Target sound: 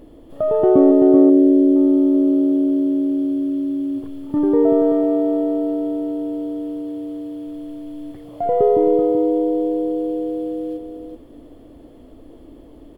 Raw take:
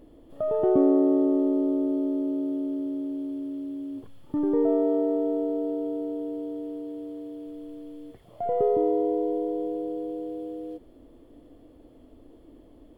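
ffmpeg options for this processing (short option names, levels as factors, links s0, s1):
-filter_complex "[0:a]asettb=1/sr,asplit=3[s0][s1][s2];[s0]atrim=end=0.914[s3];[s1]atrim=start=0.91:end=1.76,asetpts=PTS-STARTPTS,afade=t=in:d=0.004:c=qsin,afade=t=out:st=0.846:d=0.004:c=qsin,equalizer=f=1100:t=o:w=1:g=-14.5[s4];[s2]atrim=start=1.756[s5];[s3][s4]acrossfade=d=0.004:c1=hsin:c2=qsin[s6];[s6][s5]acrossfade=d=0.004:c1=qsin:c2=hsin,aecho=1:1:383:0.501,volume=2.51"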